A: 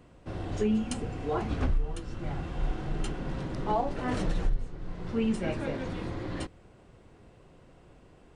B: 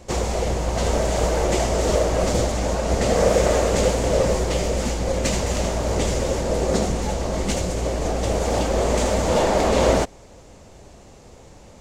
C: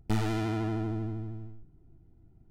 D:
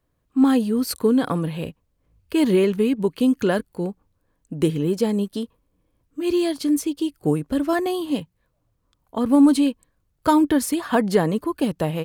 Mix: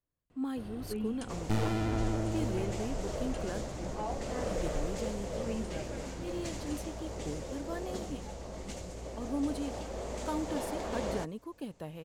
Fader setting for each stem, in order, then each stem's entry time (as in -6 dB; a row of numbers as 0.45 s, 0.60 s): -10.0 dB, -18.5 dB, -2.0 dB, -19.0 dB; 0.30 s, 1.20 s, 1.40 s, 0.00 s